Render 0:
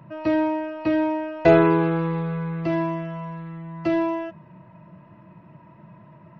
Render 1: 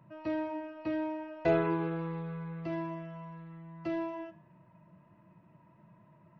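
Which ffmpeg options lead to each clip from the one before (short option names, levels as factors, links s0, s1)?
-af "flanger=delay=9.8:depth=4.4:regen=-84:speed=0.35:shape=triangular,volume=0.398"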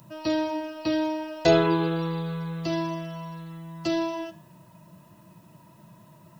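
-af "aexciter=amount=9.9:drive=3.5:freq=3300,volume=2.51"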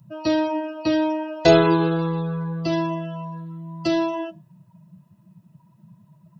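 -af "afftdn=nr=19:nf=-39,volume=1.78"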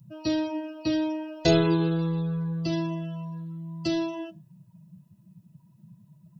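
-af "equalizer=f=1000:t=o:w=2.8:g=-11.5"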